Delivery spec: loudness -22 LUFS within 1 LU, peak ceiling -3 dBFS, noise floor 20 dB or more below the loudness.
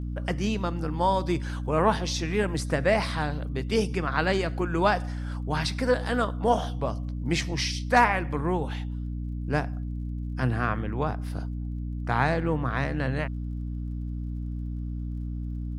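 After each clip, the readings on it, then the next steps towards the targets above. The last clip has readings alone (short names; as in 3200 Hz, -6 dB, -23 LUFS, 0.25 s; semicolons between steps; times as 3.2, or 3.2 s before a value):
ticks 33/s; hum 60 Hz; harmonics up to 300 Hz; hum level -29 dBFS; loudness -28.0 LUFS; peak -7.0 dBFS; loudness target -22.0 LUFS
-> de-click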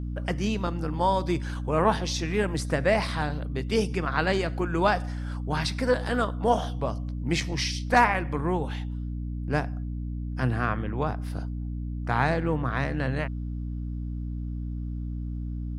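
ticks 0/s; hum 60 Hz; harmonics up to 300 Hz; hum level -29 dBFS
-> notches 60/120/180/240/300 Hz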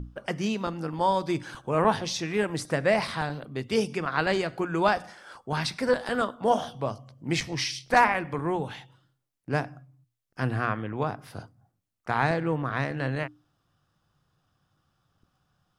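hum none; loudness -28.0 LUFS; peak -7.0 dBFS; loudness target -22.0 LUFS
-> gain +6 dB; limiter -3 dBFS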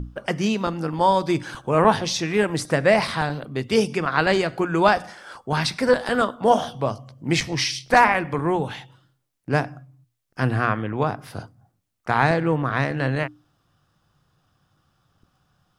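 loudness -22.0 LUFS; peak -3.0 dBFS; noise floor -71 dBFS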